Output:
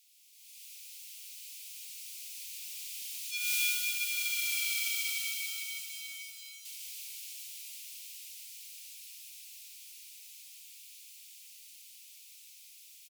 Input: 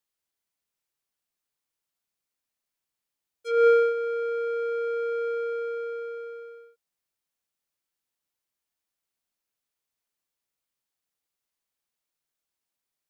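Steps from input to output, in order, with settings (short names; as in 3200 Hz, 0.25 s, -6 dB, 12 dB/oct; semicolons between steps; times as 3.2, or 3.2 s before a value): zero-crossing step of -38.5 dBFS; Doppler pass-by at 4.57, 14 m/s, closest 9 m; modulation noise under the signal 21 dB; elliptic high-pass 2400 Hz, stop band 50 dB; reverse bouncing-ball echo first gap 0.15 s, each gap 1.1×, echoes 5; AGC gain up to 13 dB; gain -1 dB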